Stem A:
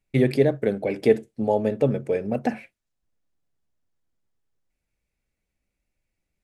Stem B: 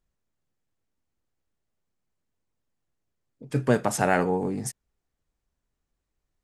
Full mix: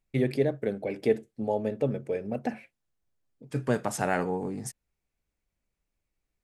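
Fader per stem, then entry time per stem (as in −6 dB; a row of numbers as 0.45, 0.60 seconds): −6.5, −5.0 decibels; 0.00, 0.00 seconds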